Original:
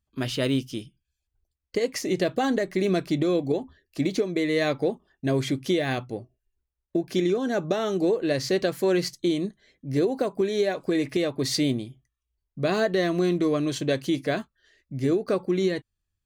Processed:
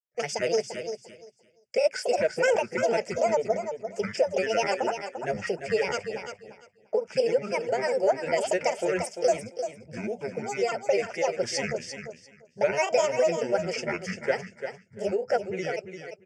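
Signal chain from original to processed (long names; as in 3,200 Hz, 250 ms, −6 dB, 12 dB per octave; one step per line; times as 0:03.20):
granular cloud, spray 20 ms, pitch spread up and down by 12 semitones
loudspeaker in its box 330–7,600 Hz, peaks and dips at 780 Hz −7 dB, 1,700 Hz −4 dB, 3,400 Hz −10 dB, 5,000 Hz +9 dB
on a send: repeating echo 345 ms, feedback 18%, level −8.5 dB
on the sum: noise gate with hold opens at −56 dBFS
phaser with its sweep stopped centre 1,100 Hz, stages 6
level +6 dB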